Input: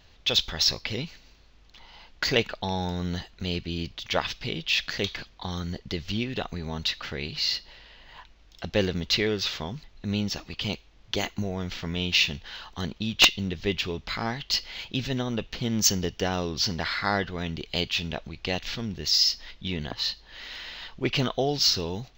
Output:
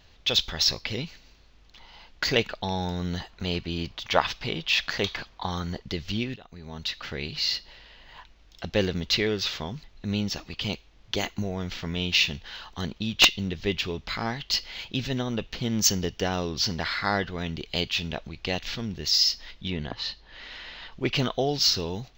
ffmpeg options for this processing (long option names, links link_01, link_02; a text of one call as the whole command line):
ffmpeg -i in.wav -filter_complex "[0:a]asettb=1/sr,asplit=3[link_01][link_02][link_03];[link_01]atrim=end=3.204[link_04];[link_02]atrim=start=3.2:end=5.82,asetpts=PTS-STARTPTS,afade=type=in:duration=0.004:curve=qsin,afade=type=out:start_time=2.616:duration=0.004:curve=qsin,equalizer=frequency=960:width_type=o:width=1.5:gain=7[link_05];[link_03]atrim=start=5.816[link_06];[link_04][link_05]acrossfade=duration=0.004:curve1=hsin:curve2=qsin[link_07];[link_07][link_06]acrossfade=duration=0.004:curve1=qsin:curve2=hsin,asettb=1/sr,asplit=3[link_08][link_09][link_10];[link_08]atrim=end=19.704[link_11];[link_09]atrim=start=19.7:end=20.92,asetpts=PTS-STARTPTS,afade=type=in:duration=0.004:curve=qsin,afade=type=out:start_time=1.216:duration=0.004:curve=qsin,aemphasis=mode=reproduction:type=50fm[link_12];[link_10]atrim=start=20.916[link_13];[link_11][link_12]acrossfade=duration=0.004:curve1=hsin:curve2=qsin[link_14];[link_14][link_13]acrossfade=duration=0.004:curve1=qsin:curve2=hsin,asplit=2[link_15][link_16];[link_15]atrim=end=6.36,asetpts=PTS-STARTPTS,afade=type=out:start_time=6.356:duration=0.004:curve=hsin:silence=0.0749894[link_17];[link_16]atrim=start=6.36,asetpts=PTS-STARTPTS,afade=type=in:duration=0.8:silence=0.0749894[link_18];[link_17][link_18]concat=n=2:v=0:a=1" out.wav